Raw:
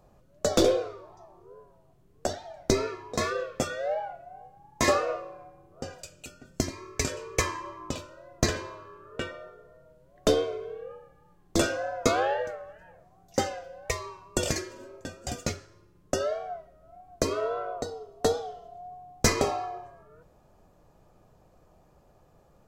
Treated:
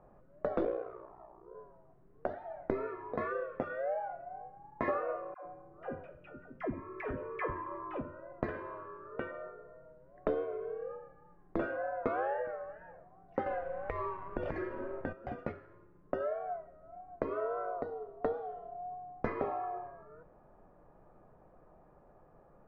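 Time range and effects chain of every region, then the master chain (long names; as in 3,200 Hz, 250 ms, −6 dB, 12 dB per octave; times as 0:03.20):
0:00.64–0:01.55: low-pass filter 7,900 Hz + ring modulation 30 Hz
0:05.34–0:08.32: Savitzky-Golay smoothing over 25 samples + all-pass dispersion lows, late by 112 ms, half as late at 540 Hz
0:13.46–0:15.13: low-shelf EQ 81 Hz +11 dB + downward compressor, threshold −30 dBFS + leveller curve on the samples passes 2
whole clip: downward compressor 2 to 1, threshold −37 dBFS; low-pass filter 1,800 Hz 24 dB per octave; parametric band 76 Hz −8.5 dB 1.8 octaves; level +1 dB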